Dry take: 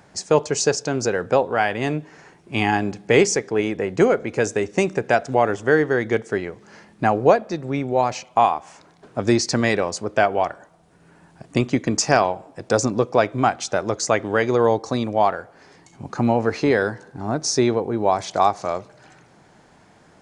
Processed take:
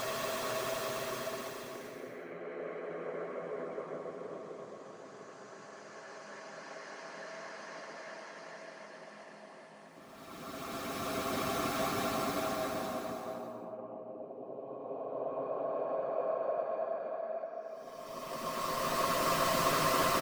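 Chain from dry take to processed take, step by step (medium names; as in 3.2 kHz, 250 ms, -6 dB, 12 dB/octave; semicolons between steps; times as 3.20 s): low-pass that closes with the level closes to 2.9 kHz, closed at -15 dBFS; inverted gate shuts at -13 dBFS, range -25 dB; high-pass 180 Hz 24 dB/octave; hum notches 60/120/180/240/300/360/420 Hz; integer overflow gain 22.5 dB; Paulstretch 16×, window 0.25 s, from 6.30 s; comb 7.5 ms, depth 42%; small resonant body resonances 640/1100 Hz, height 15 dB, ringing for 50 ms; harmonic-percussive split harmonic -7 dB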